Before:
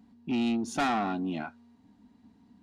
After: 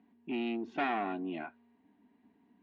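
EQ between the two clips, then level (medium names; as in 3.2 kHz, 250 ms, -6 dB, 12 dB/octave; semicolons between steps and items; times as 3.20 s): cabinet simulation 120–2700 Hz, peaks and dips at 120 Hz -8 dB, 520 Hz -9 dB, 830 Hz -6 dB, 1.3 kHz -9 dB; resonant low shelf 290 Hz -7.5 dB, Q 1.5; 0.0 dB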